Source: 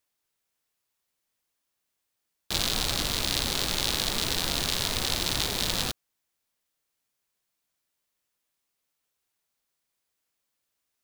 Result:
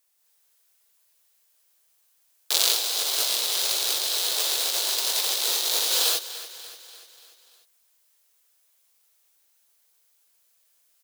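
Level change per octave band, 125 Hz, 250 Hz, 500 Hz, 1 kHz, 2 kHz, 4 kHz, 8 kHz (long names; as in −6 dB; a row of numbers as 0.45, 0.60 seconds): below −40 dB, −14.0 dB, 0.0 dB, −0.5 dB, −0.5 dB, +4.0 dB, +7.0 dB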